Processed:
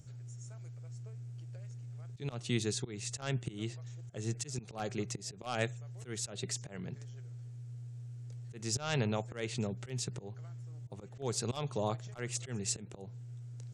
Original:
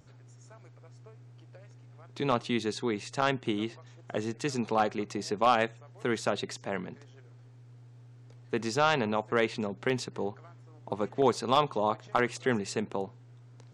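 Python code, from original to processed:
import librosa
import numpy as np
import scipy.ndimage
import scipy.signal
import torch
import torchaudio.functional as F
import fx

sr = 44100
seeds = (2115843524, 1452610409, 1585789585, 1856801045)

y = fx.auto_swell(x, sr, attack_ms=215.0)
y = fx.graphic_eq_10(y, sr, hz=(125, 250, 500, 1000, 2000, 4000, 8000), db=(7, -8, -3, -12, -4, -4, 7))
y = y * librosa.db_to_amplitude(2.0)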